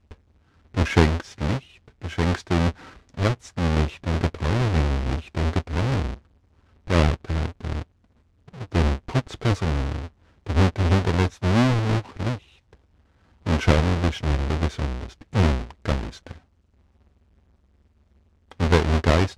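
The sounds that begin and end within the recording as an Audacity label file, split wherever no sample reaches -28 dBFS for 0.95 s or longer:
13.460000	16.310000	sound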